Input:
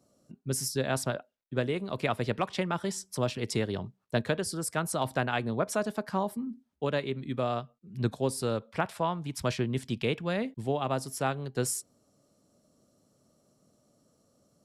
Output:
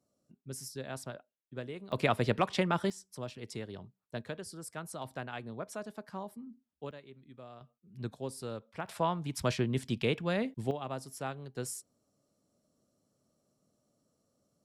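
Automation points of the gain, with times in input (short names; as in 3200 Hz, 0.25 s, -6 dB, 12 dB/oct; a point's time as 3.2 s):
-11.5 dB
from 1.92 s +1 dB
from 2.9 s -11.5 dB
from 6.91 s -20 dB
from 7.61 s -10 dB
from 8.88 s -1 dB
from 10.71 s -8.5 dB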